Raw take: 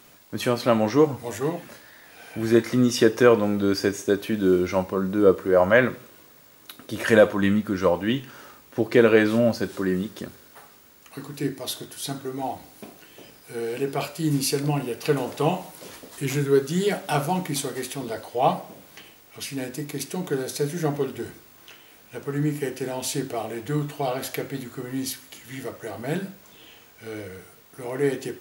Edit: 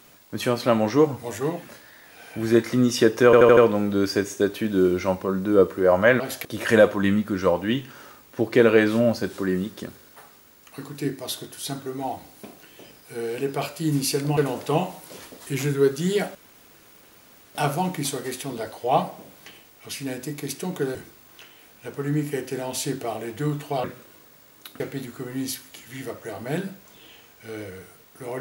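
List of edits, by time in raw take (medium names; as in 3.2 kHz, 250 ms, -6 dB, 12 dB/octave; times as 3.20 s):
3.25 s: stutter 0.08 s, 5 plays
5.88–6.84 s: swap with 24.13–24.38 s
14.76–15.08 s: delete
17.06 s: insert room tone 1.20 s
20.46–21.24 s: delete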